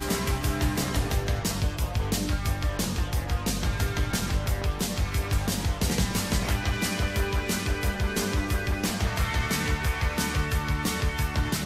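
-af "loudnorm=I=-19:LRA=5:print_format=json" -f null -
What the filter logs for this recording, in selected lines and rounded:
"input_i" : "-27.6",
"input_tp" : "-12.8",
"input_lra" : "1.0",
"input_thresh" : "-37.6",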